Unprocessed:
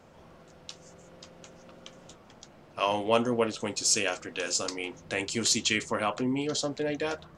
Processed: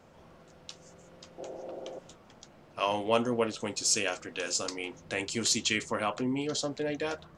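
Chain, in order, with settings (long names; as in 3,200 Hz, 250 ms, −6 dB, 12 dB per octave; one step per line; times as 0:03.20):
0:01.38–0:01.99: flat-topped bell 510 Hz +15 dB
level −2 dB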